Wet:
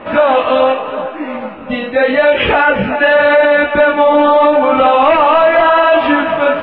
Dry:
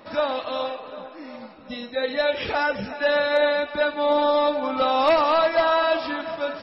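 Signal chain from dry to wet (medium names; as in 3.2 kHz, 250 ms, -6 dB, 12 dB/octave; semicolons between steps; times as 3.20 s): elliptic low-pass 3 kHz, stop band 70 dB; chorus 0.83 Hz, delay 16.5 ms, depth 6.9 ms; loudness maximiser +21.5 dB; trim -1 dB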